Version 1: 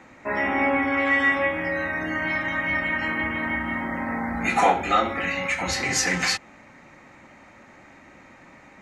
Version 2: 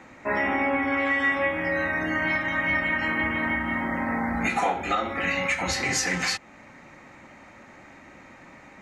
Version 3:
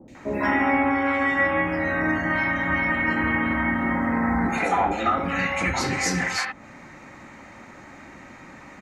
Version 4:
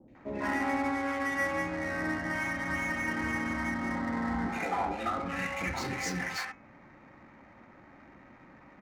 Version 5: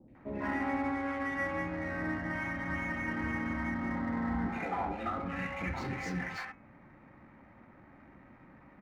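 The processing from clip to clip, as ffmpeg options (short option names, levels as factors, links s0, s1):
-af "alimiter=limit=0.168:level=0:latency=1:release=342,volume=1.12"
-filter_complex "[0:a]acrossover=split=590|2600[s0][s1][s2];[s2]adelay=80[s3];[s1]adelay=150[s4];[s0][s4][s3]amix=inputs=3:normalize=0,adynamicequalizer=threshold=0.01:dfrequency=2200:dqfactor=0.7:tfrequency=2200:tqfactor=0.7:attack=5:release=100:ratio=0.375:range=3.5:mode=cutabove:tftype=highshelf,volume=1.88"
-af "bandreject=f=82.44:t=h:w=4,bandreject=f=164.88:t=h:w=4,bandreject=f=247.32:t=h:w=4,bandreject=f=329.76:t=h:w=4,bandreject=f=412.2:t=h:w=4,bandreject=f=494.64:t=h:w=4,bandreject=f=577.08:t=h:w=4,bandreject=f=659.52:t=h:w=4,bandreject=f=741.96:t=h:w=4,bandreject=f=824.4:t=h:w=4,bandreject=f=906.84:t=h:w=4,bandreject=f=989.28:t=h:w=4,bandreject=f=1071.72:t=h:w=4,bandreject=f=1154.16:t=h:w=4,bandreject=f=1236.6:t=h:w=4,bandreject=f=1319.04:t=h:w=4,bandreject=f=1401.48:t=h:w=4,bandreject=f=1483.92:t=h:w=4,bandreject=f=1566.36:t=h:w=4,bandreject=f=1648.8:t=h:w=4,bandreject=f=1731.24:t=h:w=4,bandreject=f=1813.68:t=h:w=4,bandreject=f=1896.12:t=h:w=4,bandreject=f=1978.56:t=h:w=4,bandreject=f=2061:t=h:w=4,bandreject=f=2143.44:t=h:w=4,bandreject=f=2225.88:t=h:w=4,bandreject=f=2308.32:t=h:w=4,bandreject=f=2390.76:t=h:w=4,bandreject=f=2473.2:t=h:w=4,bandreject=f=2555.64:t=h:w=4,adynamicsmooth=sensitivity=6.5:basefreq=1800,volume=0.355"
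-af "bass=f=250:g=5,treble=f=4000:g=-12,volume=0.668"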